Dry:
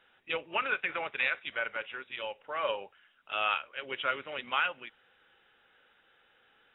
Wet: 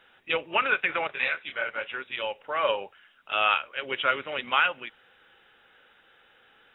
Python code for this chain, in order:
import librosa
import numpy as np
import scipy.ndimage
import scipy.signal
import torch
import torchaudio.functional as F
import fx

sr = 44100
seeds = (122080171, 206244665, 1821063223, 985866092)

y = fx.detune_double(x, sr, cents=44, at=(1.07, 1.89))
y = y * librosa.db_to_amplitude(6.5)